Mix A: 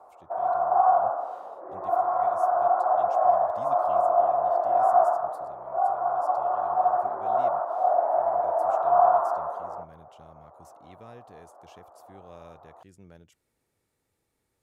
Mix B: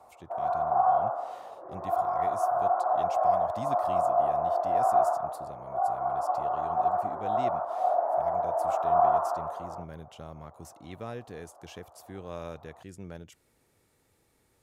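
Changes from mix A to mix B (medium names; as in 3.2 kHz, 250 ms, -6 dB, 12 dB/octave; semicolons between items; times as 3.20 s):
speech +8.5 dB; background -3.5 dB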